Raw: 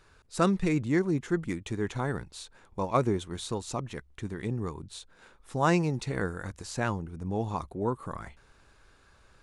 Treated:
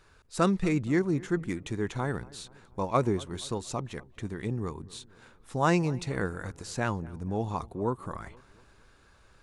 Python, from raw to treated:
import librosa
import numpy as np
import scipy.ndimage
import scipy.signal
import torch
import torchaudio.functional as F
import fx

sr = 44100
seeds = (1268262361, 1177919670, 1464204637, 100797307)

y = fx.echo_filtered(x, sr, ms=237, feedback_pct=51, hz=1800.0, wet_db=-21.0)